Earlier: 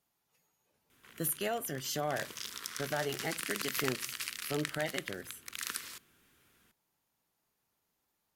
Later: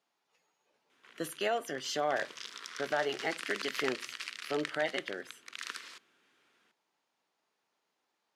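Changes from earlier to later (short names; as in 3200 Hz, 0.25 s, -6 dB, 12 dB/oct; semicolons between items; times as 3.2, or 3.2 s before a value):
speech +4.0 dB; master: add BPF 330–5000 Hz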